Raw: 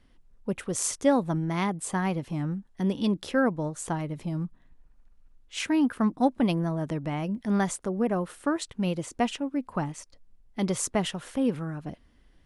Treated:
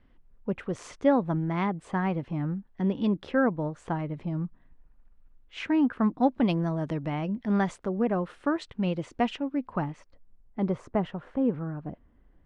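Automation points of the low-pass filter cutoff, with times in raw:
0:05.98 2,400 Hz
0:06.71 5,700 Hz
0:07.36 3,300 Hz
0:09.61 3,300 Hz
0:10.59 1,300 Hz

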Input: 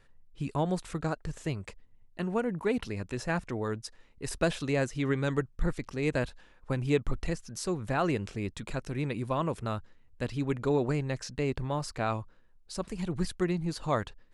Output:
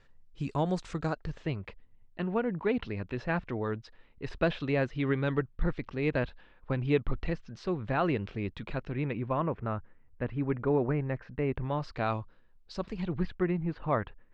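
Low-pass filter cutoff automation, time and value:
low-pass filter 24 dB per octave
0:00.99 6,800 Hz
0:01.48 3,700 Hz
0:08.75 3,700 Hz
0:09.53 2,200 Hz
0:11.39 2,200 Hz
0:12.01 4,700 Hz
0:12.88 4,700 Hz
0:13.44 2,500 Hz

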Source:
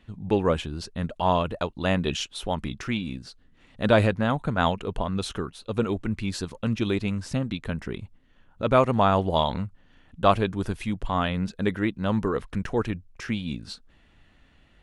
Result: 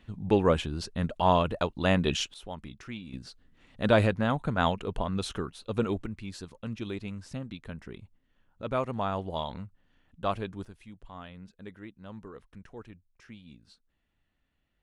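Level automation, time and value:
−0.5 dB
from 0:02.34 −12 dB
from 0:03.13 −3 dB
from 0:06.06 −10.5 dB
from 0:10.65 −19.5 dB

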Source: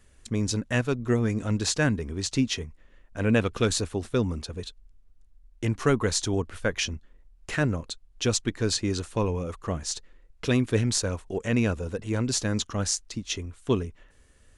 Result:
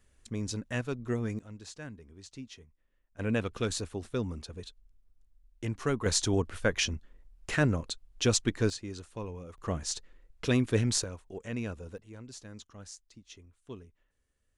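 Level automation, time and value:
−8 dB
from 0:01.39 −20 dB
from 0:03.19 −7.5 dB
from 0:06.06 −1 dB
from 0:08.70 −13 dB
from 0:09.58 −3 dB
from 0:11.04 −11.5 dB
from 0:11.98 −20 dB

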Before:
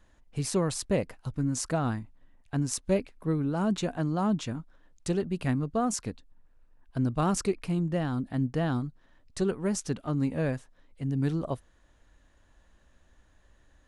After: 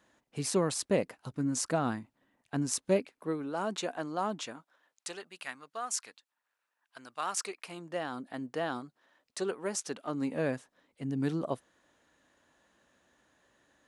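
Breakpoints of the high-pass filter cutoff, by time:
0:02.87 200 Hz
0:03.48 440 Hz
0:04.38 440 Hz
0:05.36 1,200 Hz
0:07.13 1,200 Hz
0:08.14 440 Hz
0:09.90 440 Hz
0:10.55 210 Hz

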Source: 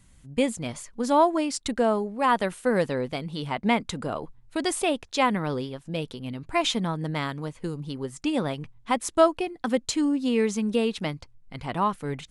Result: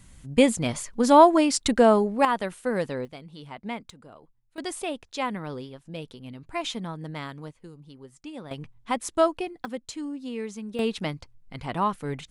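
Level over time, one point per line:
+5.5 dB
from 0:02.25 −3.5 dB
from 0:03.05 −11 dB
from 0:03.90 −18 dB
from 0:04.58 −6.5 dB
from 0:07.51 −13.5 dB
from 0:08.51 −2.5 dB
from 0:09.65 −10 dB
from 0:10.79 −0.5 dB

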